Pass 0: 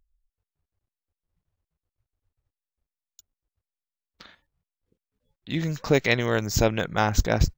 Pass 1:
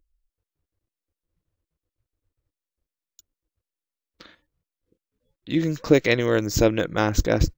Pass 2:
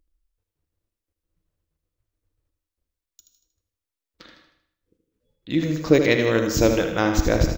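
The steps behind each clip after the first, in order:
graphic EQ with 31 bands 315 Hz +10 dB, 500 Hz +6 dB, 800 Hz -5 dB
on a send: feedback delay 78 ms, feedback 47%, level -8 dB; on the sum: gated-style reverb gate 210 ms flat, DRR 8.5 dB

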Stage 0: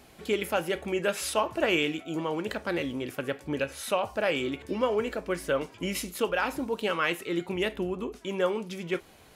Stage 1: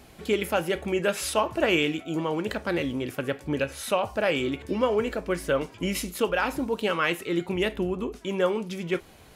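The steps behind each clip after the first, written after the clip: bass shelf 170 Hz +5.5 dB; trim +2 dB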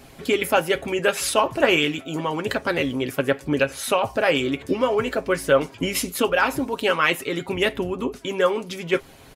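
comb 7.4 ms, depth 48%; harmonic-percussive split percussive +7 dB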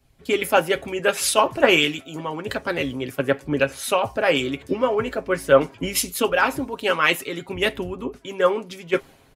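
three bands expanded up and down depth 70%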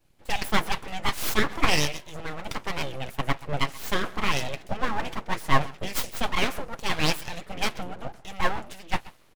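speakerphone echo 130 ms, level -18 dB; full-wave rectifier; trim -3 dB

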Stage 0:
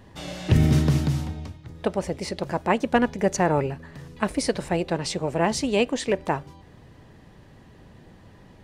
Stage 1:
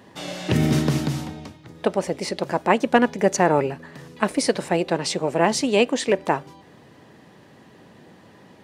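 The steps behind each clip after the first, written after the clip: high-pass 190 Hz 12 dB/octave; trim +4 dB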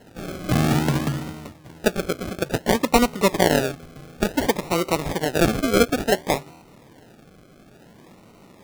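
decimation with a swept rate 37×, swing 60% 0.57 Hz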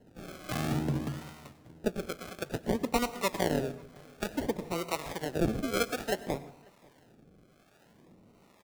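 harmonic tremolo 1.1 Hz, depth 70%, crossover 580 Hz; echo from a far wall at 93 m, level -27 dB; plate-style reverb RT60 0.57 s, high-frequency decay 0.75×, pre-delay 85 ms, DRR 15 dB; trim -8 dB

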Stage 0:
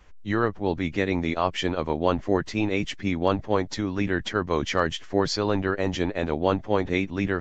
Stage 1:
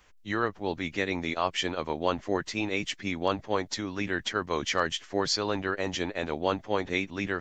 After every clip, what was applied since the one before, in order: tilt EQ +2 dB/octave; trim -3 dB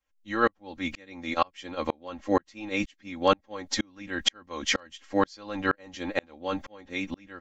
comb 3.7 ms, depth 80%; sawtooth tremolo in dB swelling 2.1 Hz, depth 36 dB; trim +6.5 dB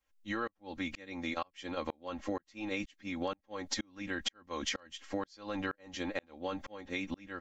compression 10:1, threshold -34 dBFS, peak gain reduction 19 dB; trim +1 dB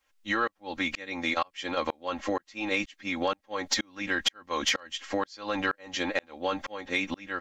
overdrive pedal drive 9 dB, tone 6.7 kHz, clips at -19 dBFS; trim +6.5 dB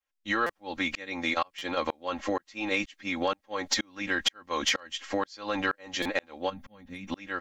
gate -58 dBFS, range -16 dB; time-frequency box 6.50–7.08 s, 270–8800 Hz -17 dB; buffer glitch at 0.46/1.58/6.02 s, samples 256, times 5

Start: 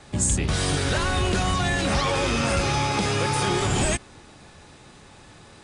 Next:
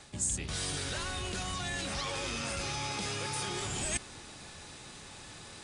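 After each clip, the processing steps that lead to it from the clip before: reverse; compression 6:1, threshold -33 dBFS, peak gain reduction 14 dB; reverse; treble shelf 2.3 kHz +9.5 dB; trim -3.5 dB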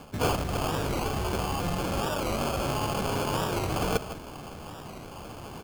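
delay 160 ms -14 dB; sample-and-hold 23×; warped record 45 rpm, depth 160 cents; trim +7 dB

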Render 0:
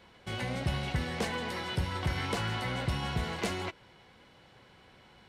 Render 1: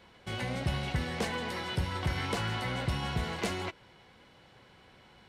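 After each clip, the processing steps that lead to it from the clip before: no audible change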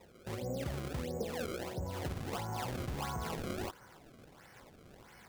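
peak limiter -30.5 dBFS, peak gain reduction 9 dB; low-pass sweep 510 Hz -> 2 kHz, 1.26–4.61 s; decimation with a swept rate 28×, swing 160% 1.5 Hz; trim -1 dB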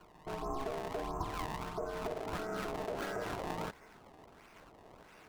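tracing distortion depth 0.054 ms; ring modulator 540 Hz; treble shelf 4.6 kHz -5.5 dB; trim +3 dB

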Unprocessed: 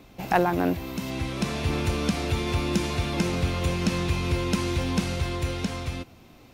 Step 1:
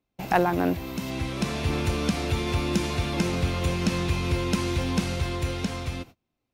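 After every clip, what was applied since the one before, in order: gate -42 dBFS, range -30 dB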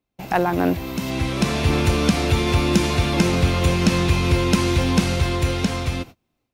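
level rider gain up to 7.5 dB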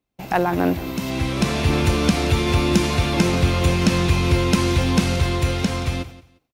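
feedback delay 176 ms, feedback 22%, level -17 dB

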